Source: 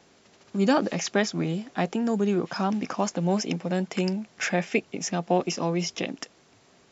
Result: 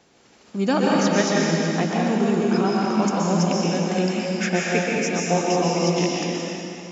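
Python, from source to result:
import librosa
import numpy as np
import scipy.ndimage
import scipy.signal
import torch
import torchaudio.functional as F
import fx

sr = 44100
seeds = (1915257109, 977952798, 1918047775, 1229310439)

y = fx.rev_plate(x, sr, seeds[0], rt60_s=2.9, hf_ratio=0.9, predelay_ms=110, drr_db=-4.5)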